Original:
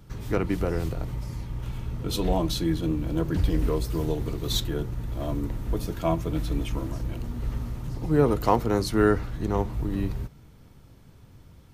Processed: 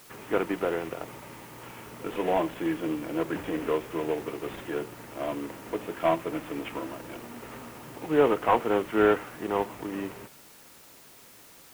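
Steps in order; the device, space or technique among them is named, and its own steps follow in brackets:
army field radio (band-pass filter 400–3,100 Hz; variable-slope delta modulation 16 kbit/s; white noise bed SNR 23 dB)
level +4 dB

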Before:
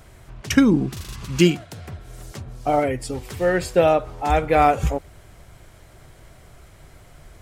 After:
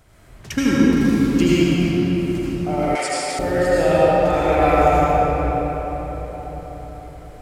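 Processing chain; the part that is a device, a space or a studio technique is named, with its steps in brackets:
cathedral (convolution reverb RT60 5.0 s, pre-delay 71 ms, DRR −9.5 dB)
0:02.95–0:03.39: meter weighting curve ITU-R 468
level −7 dB

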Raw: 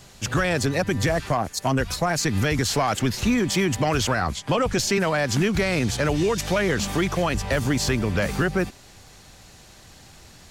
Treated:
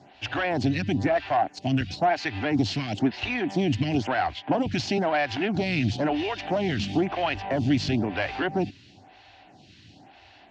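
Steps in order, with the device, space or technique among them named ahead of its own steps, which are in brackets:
vibe pedal into a guitar amplifier (phaser with staggered stages 1 Hz; tube saturation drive 17 dB, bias 0.45; loudspeaker in its box 100–4,500 Hz, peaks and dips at 100 Hz +6 dB, 290 Hz +8 dB, 480 Hz −8 dB, 740 Hz +9 dB, 1,200 Hz −9 dB, 2,800 Hz +6 dB)
level +1.5 dB

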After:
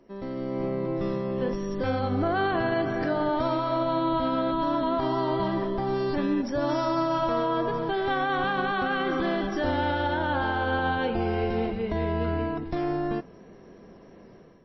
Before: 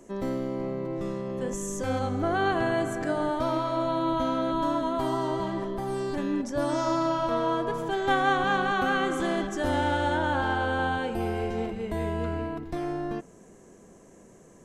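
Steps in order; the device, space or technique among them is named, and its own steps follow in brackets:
low-bitrate web radio (automatic gain control gain up to 9.5 dB; brickwall limiter −12 dBFS, peak gain reduction 8.5 dB; level −5.5 dB; MP3 24 kbit/s 16,000 Hz)

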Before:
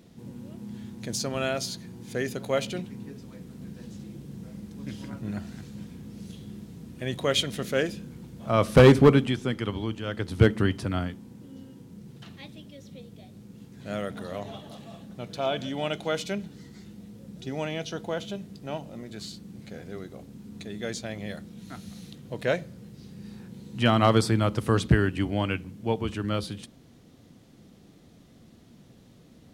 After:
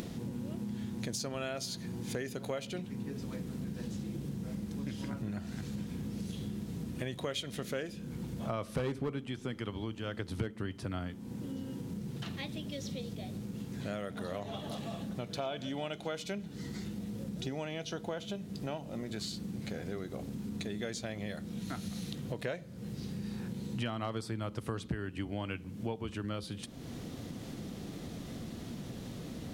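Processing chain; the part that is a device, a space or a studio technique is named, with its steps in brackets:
upward and downward compression (upward compression, threshold −39 dBFS; downward compressor 6 to 1, threshold −40 dBFS, peak gain reduction 26 dB)
0:12.72–0:13.15: parametric band 5,000 Hz +6 dB 1.2 octaves
level +5 dB

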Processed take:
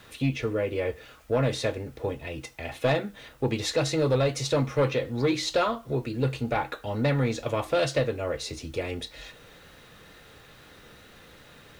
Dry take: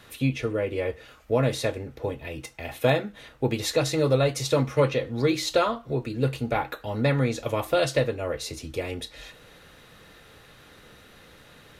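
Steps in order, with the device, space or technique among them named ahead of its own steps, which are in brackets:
compact cassette (soft clipping −15.5 dBFS, distortion −16 dB; low-pass filter 8,100 Hz 12 dB per octave; tape wow and flutter 27 cents; white noise bed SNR 36 dB)

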